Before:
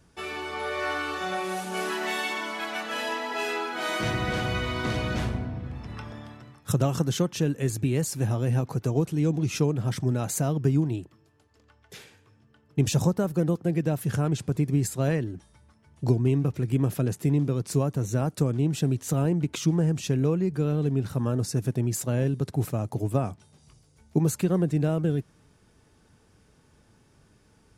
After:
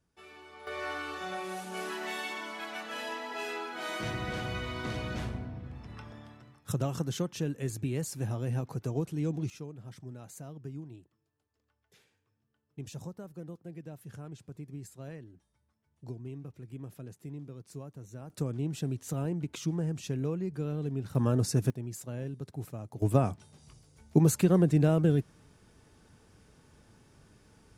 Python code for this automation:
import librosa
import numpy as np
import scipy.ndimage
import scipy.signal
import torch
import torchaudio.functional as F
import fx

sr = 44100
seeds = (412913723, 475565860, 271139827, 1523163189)

y = fx.gain(x, sr, db=fx.steps((0.0, -17.5), (0.67, -7.5), (9.5, -19.0), (18.3, -8.5), (21.15, -0.5), (21.7, -12.5), (23.02, 0.5)))